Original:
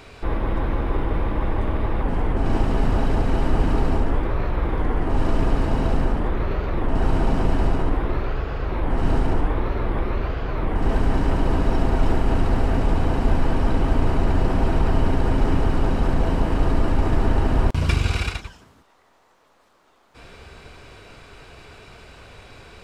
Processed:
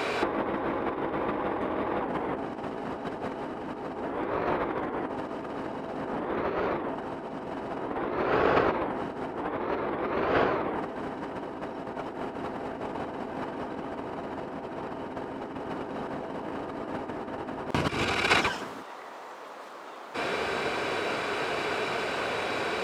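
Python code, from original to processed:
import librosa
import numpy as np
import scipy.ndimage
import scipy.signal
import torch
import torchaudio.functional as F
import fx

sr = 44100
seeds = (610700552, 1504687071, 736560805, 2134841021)

y = scipy.signal.sosfilt(scipy.signal.butter(2, 300.0, 'highpass', fs=sr, output='sos'), x)
y = fx.high_shelf(y, sr, hz=3000.0, db=-9.5)
y = fx.over_compress(y, sr, threshold_db=-37.0, ratio=-0.5)
y = F.gain(torch.from_numpy(y), 8.5).numpy()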